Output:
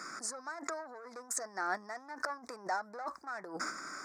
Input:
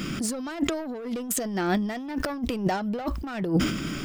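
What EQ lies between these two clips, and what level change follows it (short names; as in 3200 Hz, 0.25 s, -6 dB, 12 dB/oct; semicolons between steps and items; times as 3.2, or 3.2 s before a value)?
HPF 1500 Hz 12 dB/oct; Butterworth band-stop 3000 Hz, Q 0.6; air absorption 110 m; +6.0 dB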